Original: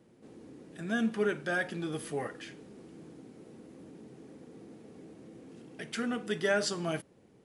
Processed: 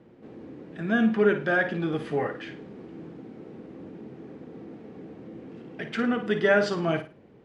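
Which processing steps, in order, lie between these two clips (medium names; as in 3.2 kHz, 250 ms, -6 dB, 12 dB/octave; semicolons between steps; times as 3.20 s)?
low-pass 2.7 kHz 12 dB/octave; flutter echo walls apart 9.3 m, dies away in 0.31 s; trim +7.5 dB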